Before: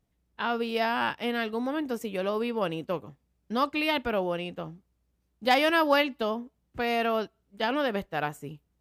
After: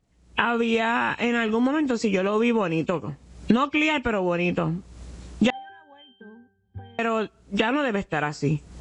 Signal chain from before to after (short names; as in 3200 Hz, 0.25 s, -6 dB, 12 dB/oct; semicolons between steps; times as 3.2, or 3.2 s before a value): nonlinear frequency compression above 2200 Hz 1.5:1; recorder AGC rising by 54 dB/s; 1.04–1.66 transient shaper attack 0 dB, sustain +6 dB; 5.5–6.99 octave resonator G, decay 0.64 s; dynamic EQ 650 Hz, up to -5 dB, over -40 dBFS, Q 1.7; gain +4 dB